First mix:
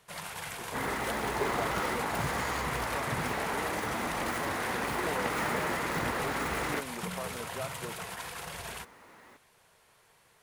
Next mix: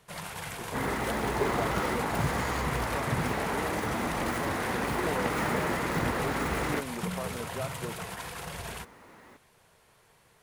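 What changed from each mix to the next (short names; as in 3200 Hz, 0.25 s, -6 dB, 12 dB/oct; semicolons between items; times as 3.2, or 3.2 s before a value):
master: add low shelf 440 Hz +6.5 dB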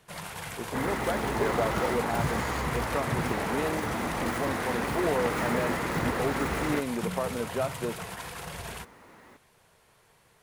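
speech +7.0 dB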